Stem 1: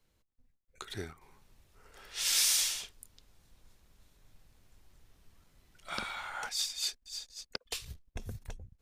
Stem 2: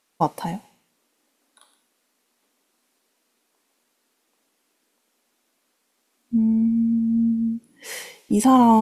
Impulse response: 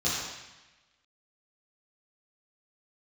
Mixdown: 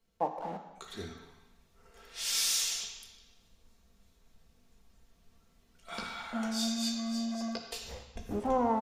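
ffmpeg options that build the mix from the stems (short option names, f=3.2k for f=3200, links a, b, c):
-filter_complex "[0:a]aecho=1:1:4.4:0.46,volume=-4.5dB,asplit=2[a][b];[b]volume=-12dB[c];[1:a]asoftclip=type=tanh:threshold=-13.5dB,acrusher=bits=4:mix=0:aa=0.000001,bandpass=f=610:t=q:w=1.8:csg=0,volume=-5.5dB,asplit=2[d][e];[e]volume=-15.5dB[f];[2:a]atrim=start_sample=2205[g];[c][f]amix=inputs=2:normalize=0[h];[h][g]afir=irnorm=-1:irlink=0[i];[a][d][i]amix=inputs=3:normalize=0"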